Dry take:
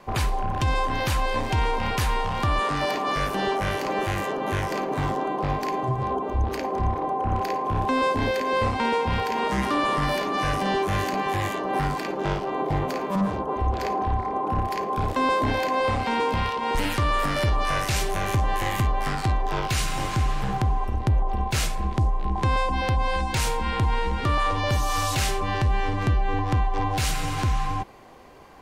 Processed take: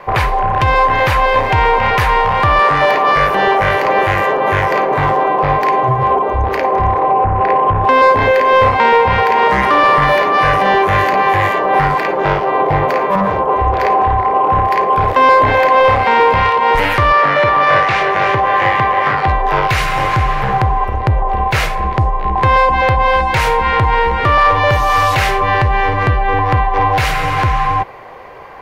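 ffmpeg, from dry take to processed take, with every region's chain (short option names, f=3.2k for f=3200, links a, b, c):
-filter_complex "[0:a]asettb=1/sr,asplit=3[a][b][c];[a]atrim=end=7.094[d];[b]atrim=start=7.09:end=7.84,asetpts=PTS-STARTPTS,afade=t=in:d=0.004:c=qsin,afade=t=out:st=0.746:d=0.004:c=qsin,lowpass=2.4k,lowshelf=f=240:g=6.5,acompressor=threshold=-20dB:ratio=4:attack=3.2:release=140:knee=1:detection=peak[e];[c]atrim=start=7.836[f];[d][e]acrossfade=d=0.004:c1=hsin:c2=qsin[g];[g][f]acrossfade=d=0.004:c1=qsin:c2=hsin,asettb=1/sr,asplit=3[h][i][j];[h]atrim=end=17.124[k];[i]atrim=start=17.12:end=19.28,asetpts=PTS-STARTPTS,afade=t=in:d=0.004:c=qsin,afade=t=out:st=2.156:d=0.004:c=qsin,highpass=160,lowpass=3.9k,aecho=1:1:309:0.447,atrim=end_sample=95256[l];[j]atrim=start=19.276[m];[k][l]acrossfade=d=0.004:c1=hsin:c2=qsin[n];[n][m]acrossfade=d=0.004:c1=qsin:c2=hsin,equalizer=f=125:t=o:w=1:g=5,equalizer=f=250:t=o:w=1:g=-6,equalizer=f=500:t=o:w=1:g=9,equalizer=f=1k:t=o:w=1:g=7,equalizer=f=2k:t=o:w=1:g=10,equalizer=f=8k:t=o:w=1:g=-8,acontrast=47"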